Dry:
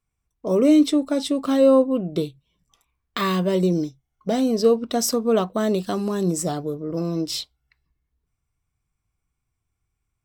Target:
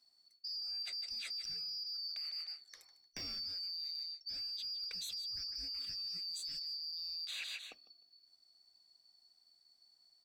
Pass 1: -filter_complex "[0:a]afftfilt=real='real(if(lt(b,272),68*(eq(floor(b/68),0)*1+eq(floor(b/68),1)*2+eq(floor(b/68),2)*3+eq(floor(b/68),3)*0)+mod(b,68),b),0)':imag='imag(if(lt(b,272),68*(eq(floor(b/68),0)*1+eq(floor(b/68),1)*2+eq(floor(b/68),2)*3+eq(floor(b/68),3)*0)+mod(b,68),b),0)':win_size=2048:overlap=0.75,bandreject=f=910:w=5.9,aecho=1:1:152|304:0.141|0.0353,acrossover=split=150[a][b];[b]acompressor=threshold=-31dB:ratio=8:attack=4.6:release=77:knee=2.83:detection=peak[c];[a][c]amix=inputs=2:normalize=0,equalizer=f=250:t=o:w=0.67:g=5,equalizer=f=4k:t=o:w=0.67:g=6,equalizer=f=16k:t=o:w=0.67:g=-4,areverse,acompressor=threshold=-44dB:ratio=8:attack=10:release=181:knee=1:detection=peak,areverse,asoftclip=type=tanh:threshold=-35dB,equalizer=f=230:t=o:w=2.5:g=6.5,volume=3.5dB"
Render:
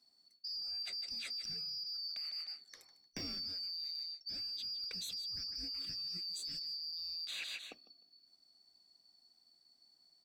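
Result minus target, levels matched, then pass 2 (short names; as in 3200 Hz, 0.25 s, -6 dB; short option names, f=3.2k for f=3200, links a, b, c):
250 Hz band +8.5 dB
-filter_complex "[0:a]afftfilt=real='real(if(lt(b,272),68*(eq(floor(b/68),0)*1+eq(floor(b/68),1)*2+eq(floor(b/68),2)*3+eq(floor(b/68),3)*0)+mod(b,68),b),0)':imag='imag(if(lt(b,272),68*(eq(floor(b/68),0)*1+eq(floor(b/68),1)*2+eq(floor(b/68),2)*3+eq(floor(b/68),3)*0)+mod(b,68),b),0)':win_size=2048:overlap=0.75,bandreject=f=910:w=5.9,aecho=1:1:152|304:0.141|0.0353,acrossover=split=150[a][b];[b]acompressor=threshold=-31dB:ratio=8:attack=4.6:release=77:knee=2.83:detection=peak[c];[a][c]amix=inputs=2:normalize=0,equalizer=f=250:t=o:w=0.67:g=5,equalizer=f=4k:t=o:w=0.67:g=6,equalizer=f=16k:t=o:w=0.67:g=-4,areverse,acompressor=threshold=-44dB:ratio=8:attack=10:release=181:knee=1:detection=peak,areverse,asoftclip=type=tanh:threshold=-35dB,equalizer=f=230:t=o:w=2.5:g=-2.5,volume=3.5dB"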